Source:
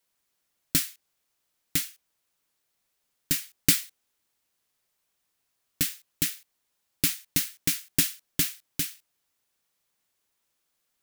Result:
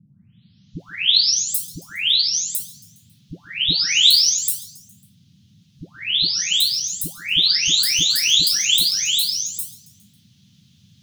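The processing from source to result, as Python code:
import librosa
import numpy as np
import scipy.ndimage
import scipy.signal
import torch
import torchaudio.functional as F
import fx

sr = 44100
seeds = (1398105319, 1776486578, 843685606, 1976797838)

p1 = fx.spec_delay(x, sr, highs='late', ms=795)
p2 = fx.curve_eq(p1, sr, hz=(1000.0, 2700.0, 5600.0, 14000.0), db=(0, 14, 6, 0))
p3 = fx.rider(p2, sr, range_db=10, speed_s=2.0)
p4 = p2 + (p3 * librosa.db_to_amplitude(1.0))
p5 = fx.dmg_noise_band(p4, sr, seeds[0], low_hz=90.0, high_hz=210.0, level_db=-48.0)
p6 = fx.band_shelf(p5, sr, hz=4500.0, db=13.0, octaves=1.3)
p7 = p6 + fx.echo_feedback(p6, sr, ms=137, feedback_pct=55, wet_db=-19.5, dry=0)
y = p7 * librosa.db_to_amplitude(-6.0)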